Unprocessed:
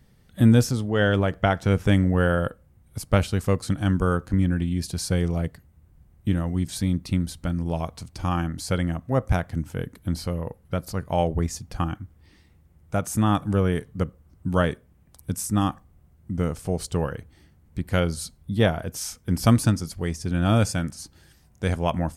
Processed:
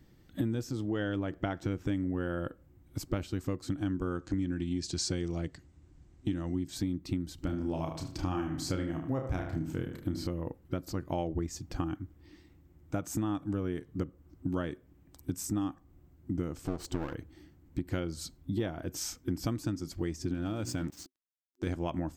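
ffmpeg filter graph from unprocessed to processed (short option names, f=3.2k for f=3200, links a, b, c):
-filter_complex "[0:a]asettb=1/sr,asplit=3[a][b][c];[a]atrim=end=4.154[d];[b]atrim=start=4.15:end=6.56,asetpts=PTS-STARTPTS,afade=t=in:d=0.004:c=qsin,afade=t=out:st=2.406:d=0.004:c=qsin,lowpass=f=8k:w=0.5412,lowpass=f=8k:w=1.3066,highshelf=f=3k:g=10.5[e];[c]atrim=start=6.556[f];[d][e]acrossfade=d=0.004:c1=hsin:c2=qsin[g];[g][f]acrossfade=d=0.004:c1=qsin:c2=hsin,asettb=1/sr,asplit=3[h][i][j];[h]atrim=end=7.354[k];[i]atrim=start=7.35:end=10.27,asetpts=PTS-STARTPTS,afade=t=in:d=0.004:c=qsin,afade=t=out:st=2.916:d=0.004:c=qsin,asplit=2[l][m];[m]adelay=32,volume=-5.5dB[n];[l][n]amix=inputs=2:normalize=0,atrim=end_sample=128772,asplit=2[o][p];[p]adelay=75,lowpass=f=3.7k:p=1,volume=-9dB,asplit=2[q][r];[r]adelay=75,lowpass=f=3.7k:p=1,volume=0.4,asplit=2[s][t];[t]adelay=75,lowpass=f=3.7k:p=1,volume=0.4,asplit=2[u][v];[v]adelay=75,lowpass=f=3.7k:p=1,volume=0.4[w];[o][q][s][u][w]amix=inputs=5:normalize=0,atrim=end_sample=128772[x];[j]atrim=start=10.266[y];[k][x]acrossfade=d=0.004:c1=hsin:c2=qsin[z];[z][y]acrossfade=d=0.004:c1=qsin:c2=hsin,asettb=1/sr,asplit=3[aa][ab][ac];[aa]atrim=end=16.674[ad];[ab]atrim=start=16.67:end=17.15,asetpts=PTS-STARTPTS,afade=t=in:d=0.004:c=qsin,afade=t=out:st=0.476:d=0.004:c=qsin,equalizer=f=920:w=1.1:g=8,aeval=exprs='clip(val(0),-1,0.02)':c=same[ae];[ac]atrim=start=17.146[af];[ad][ae]acrossfade=d=0.004:c1=hsin:c2=qsin[ag];[ag][af]acrossfade=d=0.004:c1=qsin:c2=hsin,asettb=1/sr,asplit=3[ah][ai][aj];[ah]atrim=end=20.344[ak];[ai]atrim=start=20.34:end=21.67,asetpts=PTS-STARTPTS,afade=t=in:d=0.004:c=qsin,afade=t=out:st=1.326:d=0.004:c=qsin,bandreject=f=59.26:t=h:w=4,bandreject=f=118.52:t=h:w=4,bandreject=f=177.78:t=h:w=4,bandreject=f=237.04:t=h:w=4,bandreject=f=296.3:t=h:w=4,bandreject=f=355.56:t=h:w=4,aeval=exprs='sgn(val(0))*max(abs(val(0))-0.00668,0)':c=same,acompressor=threshold=-22dB:ratio=6:attack=3.2:release=140:knee=1:detection=peak[al];[aj]atrim=start=21.666[am];[ak][al]acrossfade=d=0.004:c1=hsin:c2=qsin[an];[an][am]acrossfade=d=0.004:c1=qsin:c2=hsin,superequalizer=6b=3.55:16b=0.316,acompressor=threshold=-26dB:ratio=6,volume=-3.5dB"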